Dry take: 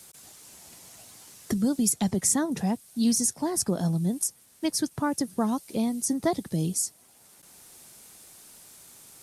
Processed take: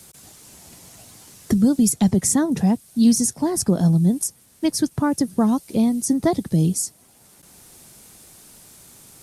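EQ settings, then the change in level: low shelf 330 Hz +8.5 dB; +3.0 dB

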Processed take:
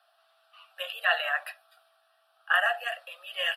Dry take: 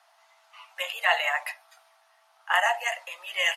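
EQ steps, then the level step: dynamic EQ 1600 Hz, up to +8 dB, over -39 dBFS, Q 2; fixed phaser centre 1400 Hz, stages 8; -2.0 dB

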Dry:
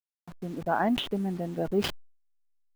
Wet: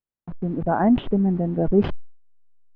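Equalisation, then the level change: air absorption 93 m; tape spacing loss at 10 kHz 31 dB; tilt -2 dB/oct; +6.5 dB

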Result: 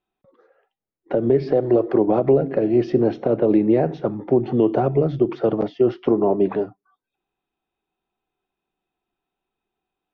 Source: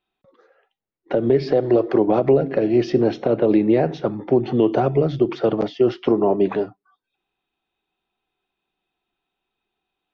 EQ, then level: high shelf 2200 Hz -11.5 dB; 0.0 dB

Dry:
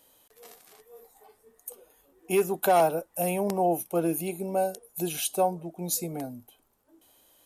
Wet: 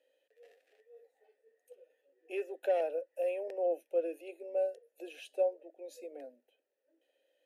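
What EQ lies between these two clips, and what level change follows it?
vowel filter e; brick-wall FIR high-pass 240 Hz; 0.0 dB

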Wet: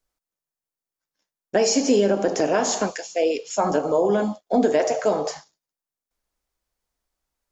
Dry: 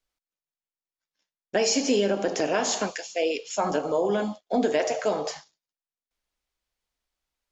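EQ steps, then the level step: bell 3000 Hz -7.5 dB 1.6 oct; +5.0 dB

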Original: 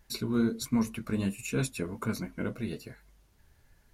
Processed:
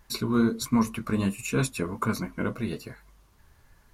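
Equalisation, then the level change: bell 1100 Hz +8.5 dB 0.5 oct; +4.0 dB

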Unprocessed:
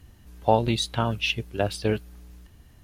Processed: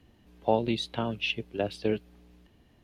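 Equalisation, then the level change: dynamic EQ 820 Hz, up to -4 dB, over -32 dBFS, Q 0.97; three-band isolator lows -13 dB, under 180 Hz, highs -16 dB, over 3800 Hz; bell 1400 Hz -7.5 dB 1.3 oct; 0.0 dB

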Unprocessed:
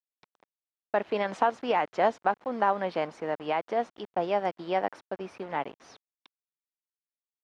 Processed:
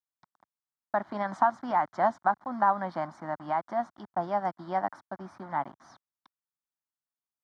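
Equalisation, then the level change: HPF 81 Hz; high shelf 3700 Hz -9 dB; fixed phaser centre 1100 Hz, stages 4; +3.5 dB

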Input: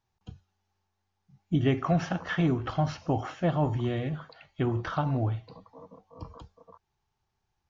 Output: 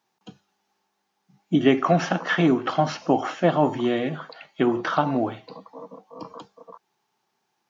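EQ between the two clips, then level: HPF 200 Hz 24 dB/oct; +9.0 dB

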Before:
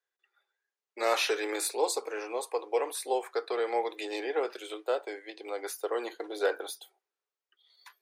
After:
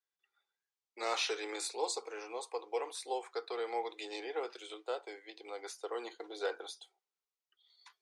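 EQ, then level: speaker cabinet 180–8100 Hz, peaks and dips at 280 Hz -8 dB, 400 Hz -4 dB, 590 Hz -9 dB, 1700 Hz -7 dB, 2600 Hz -3 dB; bell 1100 Hz -2.5 dB; -3.0 dB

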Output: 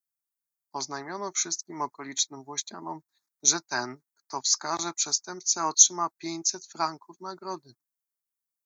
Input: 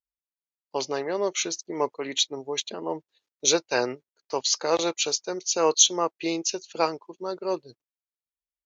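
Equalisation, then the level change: HPF 110 Hz; high shelf 6300 Hz +9.5 dB; fixed phaser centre 1200 Hz, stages 4; 0.0 dB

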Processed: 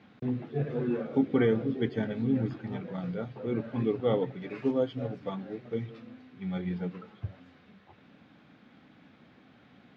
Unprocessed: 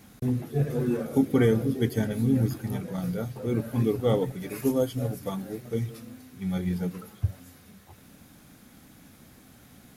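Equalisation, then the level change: Bessel high-pass 170 Hz, order 2; LPF 3500 Hz 24 dB/oct; -2.0 dB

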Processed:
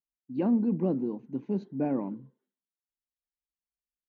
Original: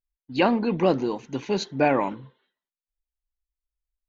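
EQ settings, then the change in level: band-pass 220 Hz, Q 1.9; 0.0 dB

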